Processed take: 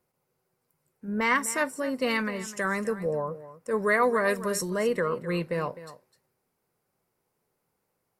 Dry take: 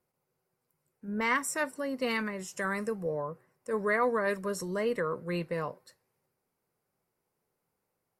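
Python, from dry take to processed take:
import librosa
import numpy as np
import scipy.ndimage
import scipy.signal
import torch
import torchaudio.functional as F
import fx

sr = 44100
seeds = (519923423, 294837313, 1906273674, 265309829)

y = fx.high_shelf(x, sr, hz=4300.0, db=7.0, at=(3.82, 4.69))
y = y + 10.0 ** (-15.0 / 20.0) * np.pad(y, (int(256 * sr / 1000.0), 0))[:len(y)]
y = y * 10.0 ** (4.0 / 20.0)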